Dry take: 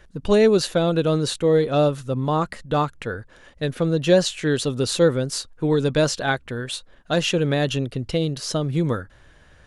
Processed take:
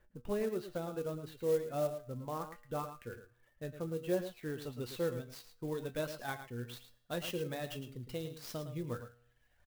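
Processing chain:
tuned comb filter 120 Hz, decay 0.78 s, harmonics all, mix 80%
reverb reduction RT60 0.98 s
Bessel low-pass filter 1,900 Hz, order 2, from 0:04.60 4,000 Hz, from 0:06.75 10,000 Hz
single-tap delay 110 ms −10.5 dB
converter with an unsteady clock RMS 0.029 ms
level −5.5 dB

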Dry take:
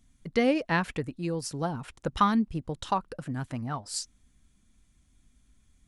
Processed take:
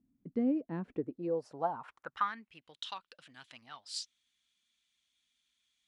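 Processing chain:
speech leveller within 3 dB 0.5 s
band-pass filter sweep 270 Hz → 3,400 Hz, 0:00.80–0:02.79

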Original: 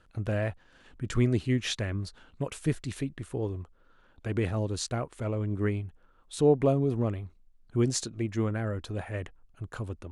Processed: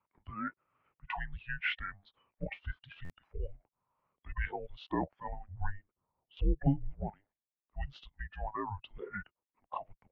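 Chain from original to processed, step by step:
downward compressor 2 to 1, threshold −29 dBFS, peak gain reduction 7.5 dB
noise reduction from a noise print of the clip's start 22 dB
0:05.48–0:06.37: spectral tilt −4.5 dB per octave
single-sideband voice off tune −400 Hz 500–2,800 Hz
buffer that repeats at 0:03.04, samples 512, times 4
level +7 dB

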